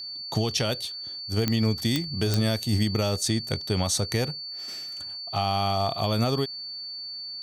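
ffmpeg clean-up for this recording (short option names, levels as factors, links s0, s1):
-af "adeclick=t=4,bandreject=f=4500:w=30"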